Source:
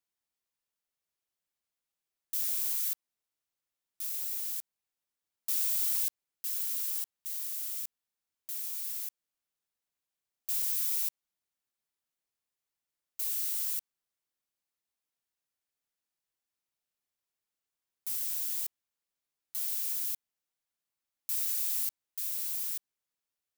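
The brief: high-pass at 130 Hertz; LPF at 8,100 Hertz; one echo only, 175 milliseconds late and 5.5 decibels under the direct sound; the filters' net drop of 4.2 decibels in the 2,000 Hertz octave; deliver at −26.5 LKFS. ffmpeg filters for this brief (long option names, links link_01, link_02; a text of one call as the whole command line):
ffmpeg -i in.wav -af "highpass=130,lowpass=8100,equalizer=frequency=2000:width_type=o:gain=-5.5,aecho=1:1:175:0.531,volume=15.5dB" out.wav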